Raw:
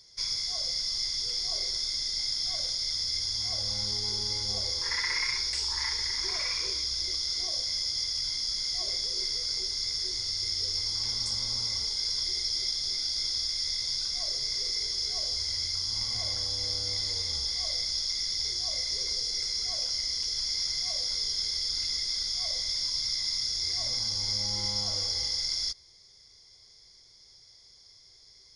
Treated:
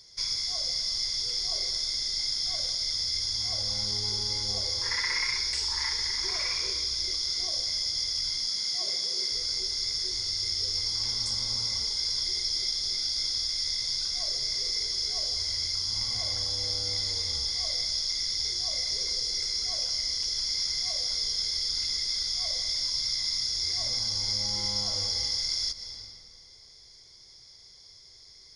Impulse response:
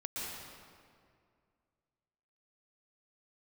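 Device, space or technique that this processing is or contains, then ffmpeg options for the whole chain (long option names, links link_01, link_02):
ducked reverb: -filter_complex "[0:a]asettb=1/sr,asplit=3[link_01][link_02][link_03];[link_01]atrim=end=8.474[link_04];[link_02]atrim=start=8.47:end=9.32,asetpts=PTS-STARTPTS,afade=type=in:duration=0.004:curve=qsin,afade=type=out:start_time=0.846:duration=0.004:curve=qsin,highpass=frequency=130:width=0.5412,highpass=frequency=130:width=1.3066[link_05];[link_03]atrim=start=9.316[link_06];[link_04][link_05]acrossfade=duration=0.004:curve1=hsin:curve2=qsin[link_07];[link_07][link_06]acrossfade=duration=0.004:curve1=qsin:curve2=hsin,asplit=3[link_08][link_09][link_10];[1:a]atrim=start_sample=2205[link_11];[link_09][link_11]afir=irnorm=-1:irlink=0[link_12];[link_10]apad=whole_len=1259104[link_13];[link_12][link_13]sidechaincompress=threshold=-39dB:ratio=5:attack=27:release=304,volume=-4.5dB[link_14];[link_08][link_14]amix=inputs=2:normalize=0"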